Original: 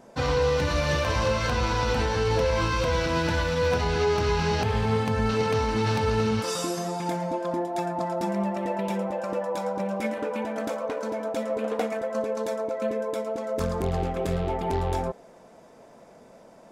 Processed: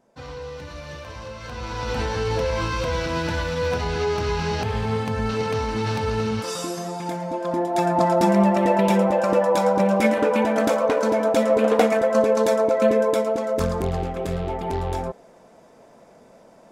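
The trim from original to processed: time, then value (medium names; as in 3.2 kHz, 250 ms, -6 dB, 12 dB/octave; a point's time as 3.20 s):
1.35 s -12 dB
2.00 s 0 dB
7.25 s 0 dB
7.99 s +10 dB
13.04 s +10 dB
14.07 s +0.5 dB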